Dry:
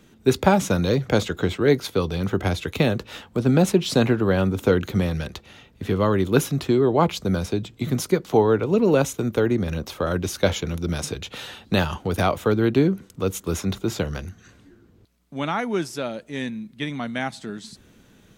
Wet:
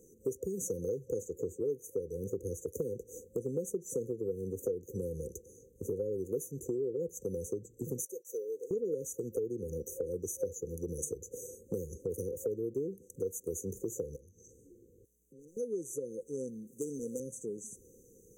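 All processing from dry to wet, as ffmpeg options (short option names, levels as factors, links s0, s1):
-filter_complex "[0:a]asettb=1/sr,asplit=3[s0][s1][s2];[s0]atrim=end=8.054[s3];[s1]atrim=start=8.05:end=8.71,asetpts=PTS-STARTPTS,afade=t=in:d=0.004:c=qsin,afade=t=out:st=0.656:d=0.004:c=qsin,highpass=1200,agate=range=0.0224:threshold=0.00562:ratio=3:release=100:detection=peak[s4];[s2]atrim=start=8.706[s5];[s3][s4]acrossfade=d=0.004:c1=hsin:c2=qsin[s6];[s6][s5]acrossfade=d=0.004:c1=qsin:c2=hsin,asettb=1/sr,asplit=3[s7][s8][s9];[s7]atrim=end=14.164[s10];[s8]atrim=start=14.16:end=15.57,asetpts=PTS-STARTPTS,afade=t=in:d=0.004:c=qsin,afade=t=out:st=1.406:d=0.004:c=qsin,asoftclip=type=hard:threshold=0.0447,acompressor=threshold=0.00501:ratio=8:attack=3.2:release=140:knee=1:detection=peak[s11];[s9]atrim=start=15.566[s12];[s10][s11]acrossfade=d=0.004:c1=hsin:c2=qsin[s13];[s13][s12]acrossfade=d=0.004:c1=qsin:c2=hsin,asettb=1/sr,asplit=3[s14][s15][s16];[s14]atrim=end=16.674[s17];[s15]atrim=start=16.67:end=17.2,asetpts=PTS-STARTPTS,afade=t=in:d=0.004:c=qsin,afade=t=out:st=0.526:d=0.004:c=qsin,asplit=2[s18][s19];[s19]highpass=f=720:p=1,volume=7.08,asoftclip=type=tanh:threshold=0.251[s20];[s18][s20]amix=inputs=2:normalize=0,lowpass=f=7300:p=1,volume=0.501,highshelf=f=11000:g=5[s21];[s16]atrim=start=17.196[s22];[s17][s21]acrossfade=d=0.004:c1=hsin:c2=qsin[s23];[s23][s22]acrossfade=d=0.004:c1=qsin:c2=hsin,afftfilt=real='re*(1-between(b*sr/4096,530,5900))':imag='im*(1-between(b*sr/4096,530,5900))':win_size=4096:overlap=0.75,lowshelf=f=350:t=q:w=1.5:g=-11,acompressor=threshold=0.0158:ratio=4,volume=1.19"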